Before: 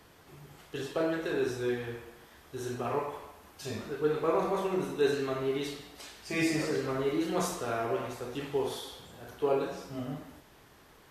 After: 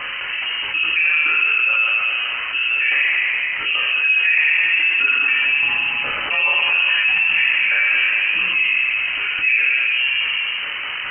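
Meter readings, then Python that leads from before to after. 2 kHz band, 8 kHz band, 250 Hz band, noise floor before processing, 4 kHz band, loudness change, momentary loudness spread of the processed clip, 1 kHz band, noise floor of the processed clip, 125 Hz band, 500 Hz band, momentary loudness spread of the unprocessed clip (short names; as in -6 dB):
+28.0 dB, under -30 dB, under -10 dB, -58 dBFS, +24.0 dB, +17.0 dB, 6 LU, +7.0 dB, -26 dBFS, under -10 dB, -11.0 dB, 17 LU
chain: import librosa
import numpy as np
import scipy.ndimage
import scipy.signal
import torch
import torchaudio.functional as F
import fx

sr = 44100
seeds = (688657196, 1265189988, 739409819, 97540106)

p1 = fx.quant_dither(x, sr, seeds[0], bits=8, dither='none')
p2 = x + (p1 * librosa.db_to_amplitude(-3.0))
p3 = fx.filter_lfo_lowpass(p2, sr, shape='saw_down', hz=4.8, low_hz=700.0, high_hz=2000.0, q=1.4)
p4 = fx.rev_gated(p3, sr, seeds[1], gate_ms=470, shape='falling', drr_db=-4.5)
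p5 = fx.freq_invert(p4, sr, carrier_hz=3000)
p6 = fx.env_flatten(p5, sr, amount_pct=70)
y = p6 * librosa.db_to_amplitude(-3.0)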